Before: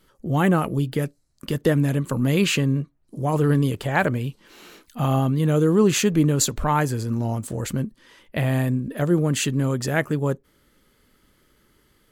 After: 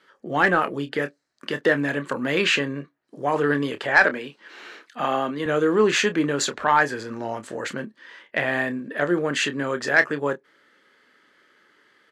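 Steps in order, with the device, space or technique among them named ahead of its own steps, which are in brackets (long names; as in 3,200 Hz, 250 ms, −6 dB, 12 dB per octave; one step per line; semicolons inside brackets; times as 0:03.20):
intercom (band-pass filter 380–4,700 Hz; parametric band 1,700 Hz +9 dB 0.58 octaves; soft clipping −8 dBFS, distortion −20 dB; double-tracking delay 28 ms −11 dB)
0:04.04–0:05.46: high-pass filter 160 Hz 24 dB per octave
level +2.5 dB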